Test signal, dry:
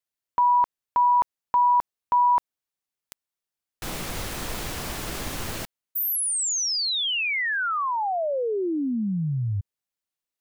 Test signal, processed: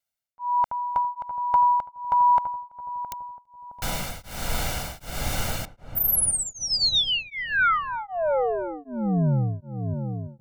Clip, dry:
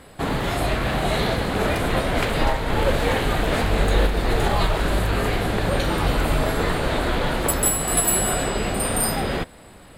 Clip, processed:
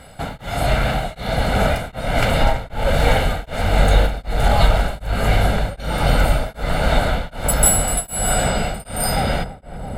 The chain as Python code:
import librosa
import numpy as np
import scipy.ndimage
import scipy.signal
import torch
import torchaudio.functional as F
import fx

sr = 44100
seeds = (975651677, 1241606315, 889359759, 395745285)

p1 = x + 0.63 * np.pad(x, (int(1.4 * sr / 1000.0), 0))[:len(x)]
p2 = p1 + fx.echo_filtered(p1, sr, ms=333, feedback_pct=80, hz=1200.0, wet_db=-8.0, dry=0)
p3 = p2 * np.abs(np.cos(np.pi * 1.3 * np.arange(len(p2)) / sr))
y = F.gain(torch.from_numpy(p3), 2.5).numpy()